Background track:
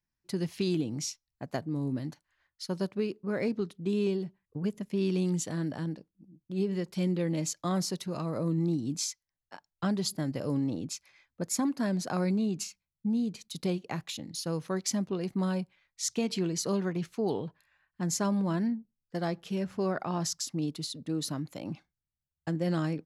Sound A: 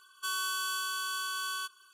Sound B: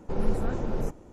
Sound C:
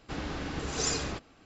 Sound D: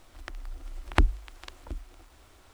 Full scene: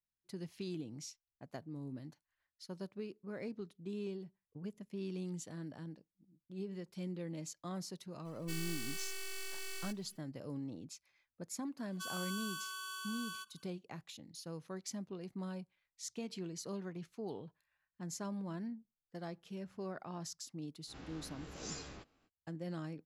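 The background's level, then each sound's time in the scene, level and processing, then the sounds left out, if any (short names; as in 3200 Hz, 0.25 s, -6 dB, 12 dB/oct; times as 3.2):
background track -13 dB
8.25 add A -6.5 dB + full-wave rectifier
11.77 add A -10 dB
20.85 add C -17 dB, fades 0.05 s + spectral swells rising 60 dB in 0.32 s
not used: B, D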